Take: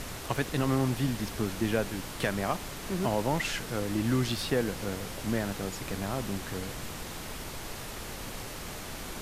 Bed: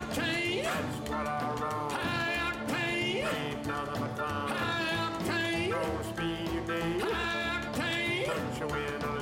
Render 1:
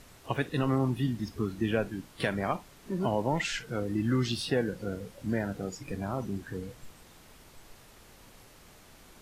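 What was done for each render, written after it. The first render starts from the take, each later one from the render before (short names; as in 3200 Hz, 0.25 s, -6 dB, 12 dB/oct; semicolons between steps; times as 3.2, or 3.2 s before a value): noise print and reduce 15 dB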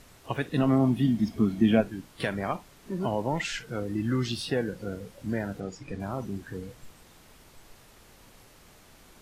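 0.51–1.8 small resonant body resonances 220/660/2200/3200 Hz, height 9 dB -> 12 dB, ringing for 30 ms; 5.6–6 air absorption 60 m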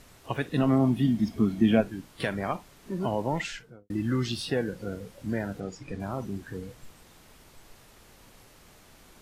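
3.35–3.9 studio fade out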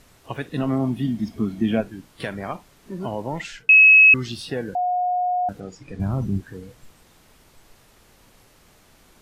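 3.69–4.14 bleep 2570 Hz -7.5 dBFS; 4.75–5.49 bleep 722 Hz -19 dBFS; 5.99–6.41 tone controls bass +15 dB, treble 0 dB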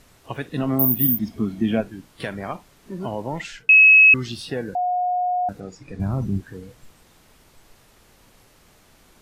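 0.79–1.19 careless resampling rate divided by 3×, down filtered, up zero stuff; 4.54–6.26 notch 3100 Hz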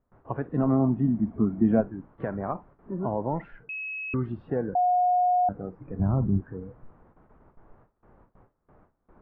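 gate with hold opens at -43 dBFS; LPF 1300 Hz 24 dB/oct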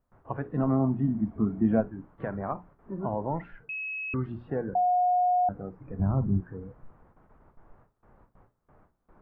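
bell 360 Hz -3 dB 2 oct; notches 60/120/180/240/300/360/420 Hz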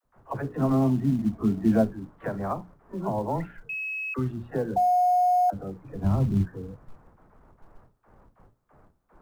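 dispersion lows, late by 50 ms, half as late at 430 Hz; in parallel at -9 dB: short-mantissa float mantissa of 2-bit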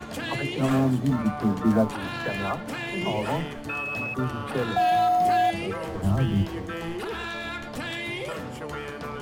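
add bed -1 dB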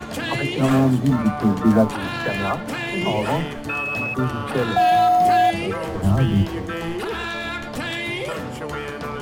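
gain +5.5 dB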